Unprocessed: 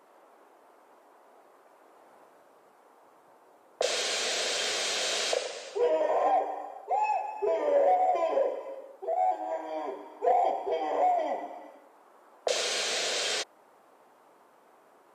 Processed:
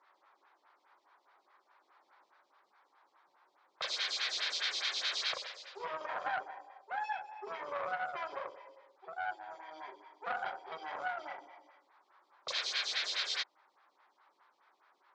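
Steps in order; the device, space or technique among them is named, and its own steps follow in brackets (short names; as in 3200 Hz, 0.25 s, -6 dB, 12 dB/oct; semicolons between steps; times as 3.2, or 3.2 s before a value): vibe pedal into a guitar amplifier (photocell phaser 4.8 Hz; tube stage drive 20 dB, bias 0.7; speaker cabinet 100–4300 Hz, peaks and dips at 250 Hz -5 dB, 470 Hz -10 dB, 670 Hz -9 dB, 2800 Hz -7 dB); weighting filter ITU-R 468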